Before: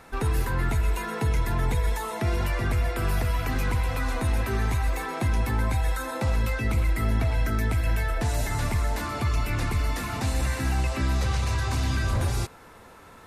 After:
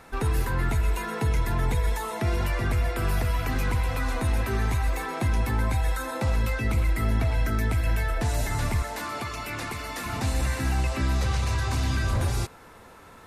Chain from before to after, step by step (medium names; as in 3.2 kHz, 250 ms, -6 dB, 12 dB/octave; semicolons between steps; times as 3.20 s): 8.82–10.06 s: high-pass 360 Hz 6 dB/octave